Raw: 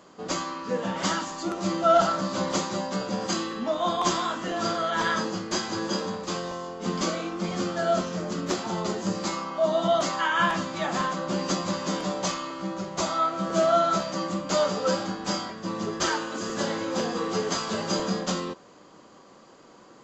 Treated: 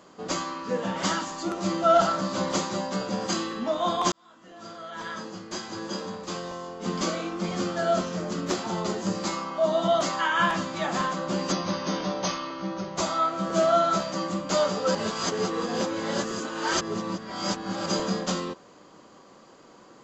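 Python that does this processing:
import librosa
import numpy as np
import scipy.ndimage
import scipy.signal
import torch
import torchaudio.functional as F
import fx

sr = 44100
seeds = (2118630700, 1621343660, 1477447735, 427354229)

y = fx.brickwall_lowpass(x, sr, high_hz=6600.0, at=(11.51, 12.95), fade=0.02)
y = fx.edit(y, sr, fx.fade_in_span(start_s=4.12, length_s=3.1),
    fx.reverse_span(start_s=14.95, length_s=2.91), tone=tone)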